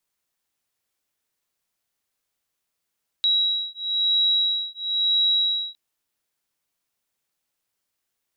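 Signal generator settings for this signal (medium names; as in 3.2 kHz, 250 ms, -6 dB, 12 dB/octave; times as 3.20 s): beating tones 3.87 kHz, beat 1 Hz, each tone -22.5 dBFS 2.51 s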